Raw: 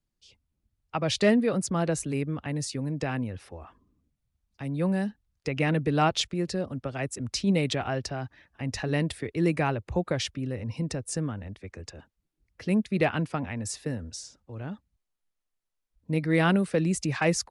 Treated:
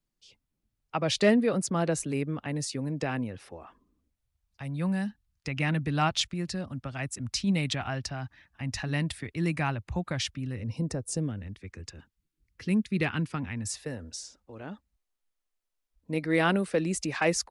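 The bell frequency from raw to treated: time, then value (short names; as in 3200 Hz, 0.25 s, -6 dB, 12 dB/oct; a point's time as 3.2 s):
bell -12 dB 1 oct
3.57 s 67 Hz
4.85 s 450 Hz
10.49 s 450 Hz
10.91 s 3300 Hz
11.49 s 630 Hz
13.57 s 630 Hz
14.04 s 120 Hz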